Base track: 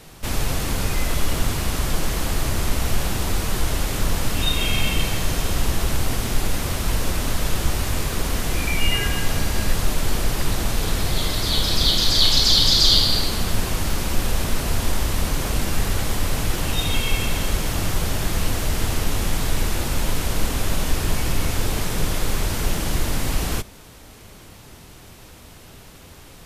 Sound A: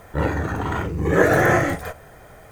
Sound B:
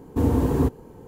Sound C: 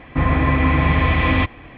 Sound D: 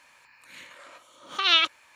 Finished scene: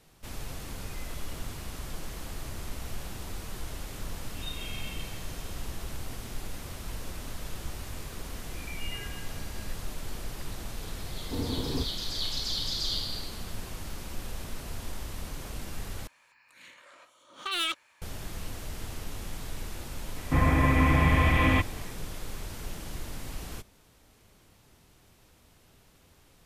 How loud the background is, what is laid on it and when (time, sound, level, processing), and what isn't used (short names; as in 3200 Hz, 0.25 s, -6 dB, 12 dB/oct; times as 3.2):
base track -16 dB
11.15 add B -12 dB
16.07 replace with D -6 dB + hard clip -19 dBFS
20.16 add C -6 dB
not used: A